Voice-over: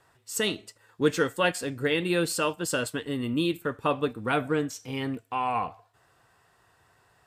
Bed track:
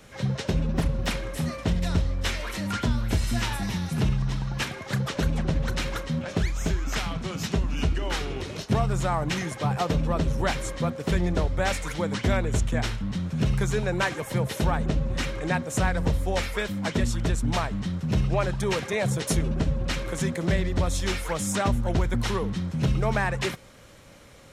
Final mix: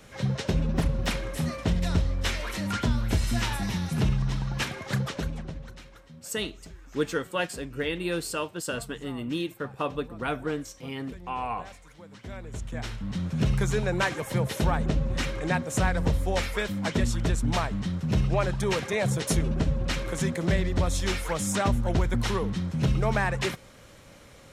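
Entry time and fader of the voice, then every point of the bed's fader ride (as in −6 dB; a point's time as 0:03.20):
5.95 s, −4.0 dB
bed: 0:04.98 −0.5 dB
0:05.89 −20.5 dB
0:12.08 −20.5 dB
0:13.23 −0.5 dB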